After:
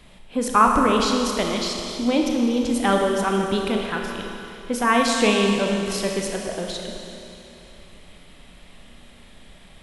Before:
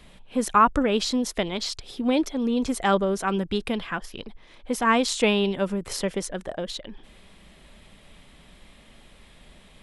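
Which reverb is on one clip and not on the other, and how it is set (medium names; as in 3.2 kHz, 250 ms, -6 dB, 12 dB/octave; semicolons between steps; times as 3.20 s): Schroeder reverb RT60 2.9 s, combs from 26 ms, DRR 1 dB; trim +1 dB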